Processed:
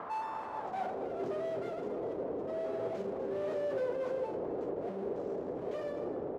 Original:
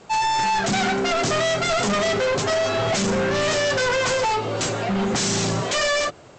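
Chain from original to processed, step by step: half-waves squared off; wind noise 570 Hz -14 dBFS; low shelf 200 Hz +4.5 dB; notches 50/100/150/200 Hz; limiter -15.5 dBFS, peak gain reduction 21 dB; band-pass sweep 1100 Hz -> 450 Hz, 0.45–1.16; on a send: echo 0.248 s -13 dB; on the sum: gain -8.5 dB

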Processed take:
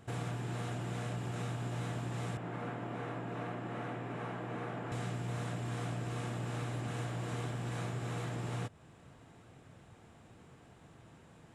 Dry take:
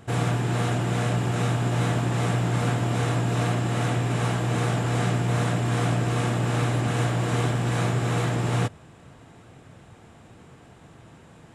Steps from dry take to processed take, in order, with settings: 2.37–4.92 three-band isolator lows -15 dB, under 160 Hz, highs -17 dB, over 2600 Hz; compressor 2:1, threshold -31 dBFS, peak gain reduction 6.5 dB; gain -8.5 dB

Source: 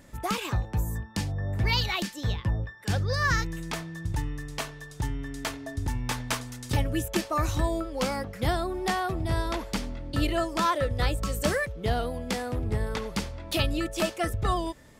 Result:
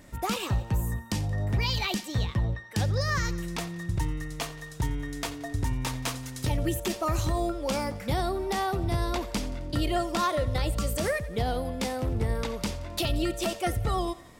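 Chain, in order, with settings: dynamic EQ 1500 Hz, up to -5 dB, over -42 dBFS, Q 1.5; limiter -19.5 dBFS, peak gain reduction 7 dB; thinning echo 92 ms, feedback 58%, high-pass 380 Hz, level -18 dB; speed mistake 24 fps film run at 25 fps; gain +1.5 dB

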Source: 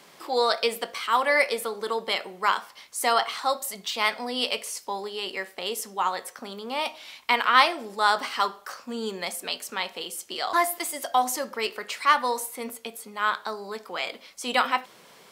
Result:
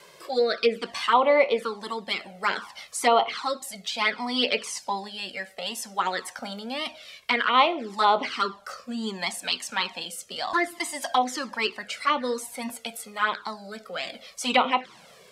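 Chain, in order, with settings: rotary speaker horn 0.6 Hz; envelope flanger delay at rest 2 ms, full sweep at -21 dBFS; treble ducked by the level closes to 2300 Hz, closed at -24.5 dBFS; gain +8 dB

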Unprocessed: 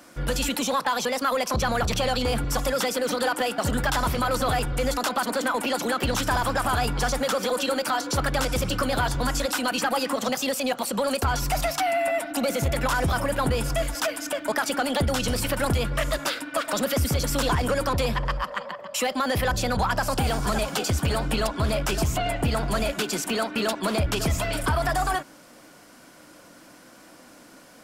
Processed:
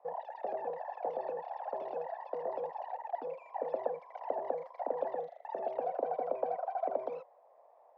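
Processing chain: wide varispeed 3.49×; Butterworth band-pass 610 Hz, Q 2.4

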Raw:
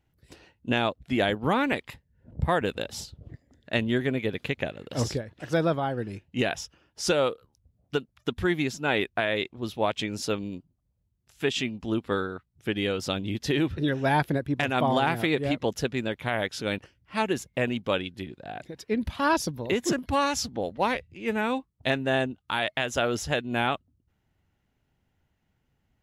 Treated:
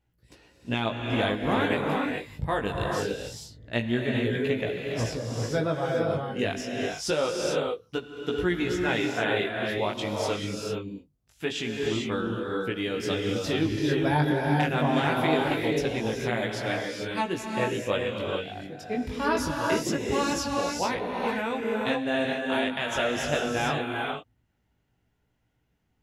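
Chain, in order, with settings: chorus 0.24 Hz, delay 16.5 ms, depth 4 ms; non-linear reverb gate 0.47 s rising, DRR 0 dB

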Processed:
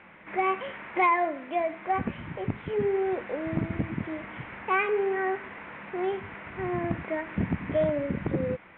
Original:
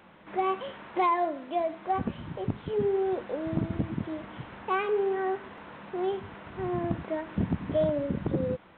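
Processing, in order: synth low-pass 2200 Hz, resonance Q 3.5

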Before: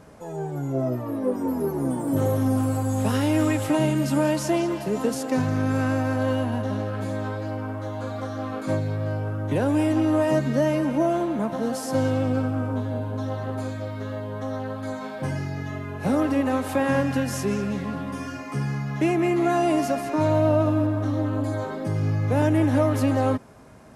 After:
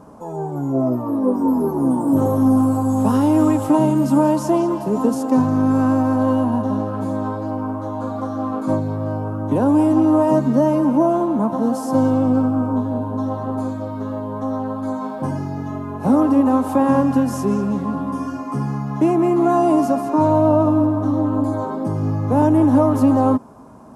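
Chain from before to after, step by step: ten-band EQ 250 Hz +9 dB, 1000 Hz +12 dB, 2000 Hz -11 dB, 4000 Hz -4 dB

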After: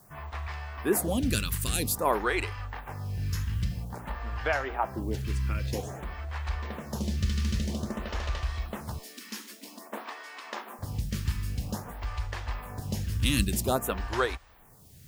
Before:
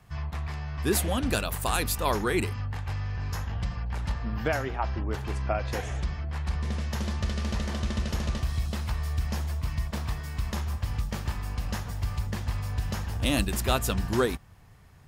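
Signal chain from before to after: in parallel at -9.5 dB: requantised 8-bit, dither triangular; 8.98–10.79 on the sum: brick-wall FIR high-pass 210 Hz; photocell phaser 0.51 Hz

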